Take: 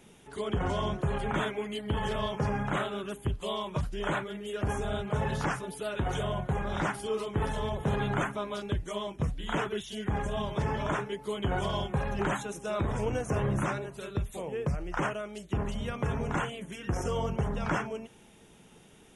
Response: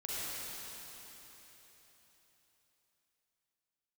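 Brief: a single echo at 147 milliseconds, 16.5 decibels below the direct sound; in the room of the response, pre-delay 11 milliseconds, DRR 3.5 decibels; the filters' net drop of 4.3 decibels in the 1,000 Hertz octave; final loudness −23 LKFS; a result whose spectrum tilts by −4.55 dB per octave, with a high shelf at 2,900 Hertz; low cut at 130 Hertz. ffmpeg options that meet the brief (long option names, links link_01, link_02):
-filter_complex "[0:a]highpass=130,equalizer=frequency=1000:width_type=o:gain=-6.5,highshelf=frequency=2900:gain=7,aecho=1:1:147:0.15,asplit=2[link_01][link_02];[1:a]atrim=start_sample=2205,adelay=11[link_03];[link_02][link_03]afir=irnorm=-1:irlink=0,volume=-7dB[link_04];[link_01][link_04]amix=inputs=2:normalize=0,volume=9.5dB"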